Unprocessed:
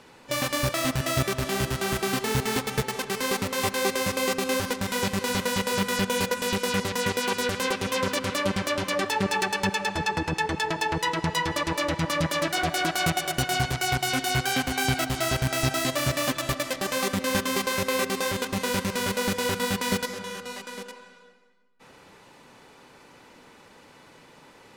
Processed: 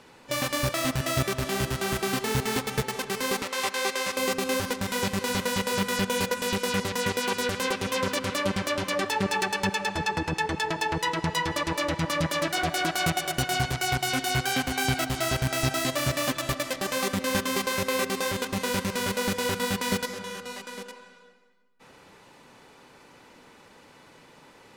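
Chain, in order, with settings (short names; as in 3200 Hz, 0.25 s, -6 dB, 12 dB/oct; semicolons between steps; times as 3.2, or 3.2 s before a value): 3.42–4.17 weighting filter A; gain -1 dB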